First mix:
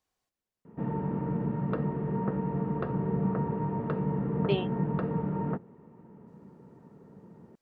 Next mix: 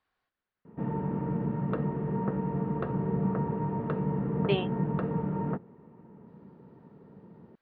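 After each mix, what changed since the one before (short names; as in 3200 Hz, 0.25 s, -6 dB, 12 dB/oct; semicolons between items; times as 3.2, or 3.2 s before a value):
speech: add bell 1500 Hz +10 dB 1.1 oct; master: add steep low-pass 4400 Hz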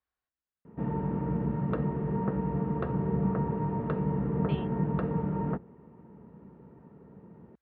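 speech -12.0 dB; master: add bell 61 Hz +11 dB 0.66 oct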